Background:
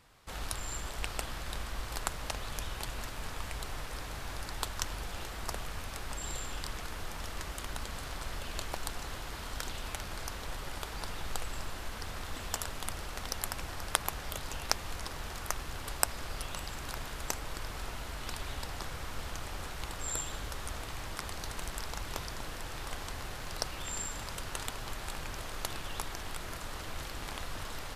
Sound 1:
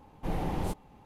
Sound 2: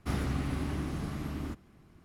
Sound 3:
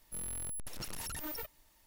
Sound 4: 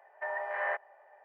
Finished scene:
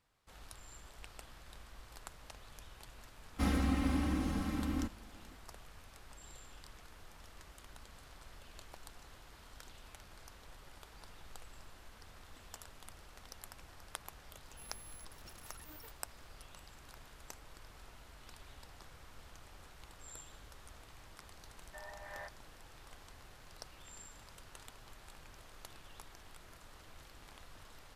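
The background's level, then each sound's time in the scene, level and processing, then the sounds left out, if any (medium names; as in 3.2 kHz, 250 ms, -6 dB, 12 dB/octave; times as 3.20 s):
background -15.5 dB
3.33 s: add 2 -2 dB + comb 3.8 ms, depth 94%
14.45 s: add 3 -13.5 dB
21.52 s: add 4 -15.5 dB
not used: 1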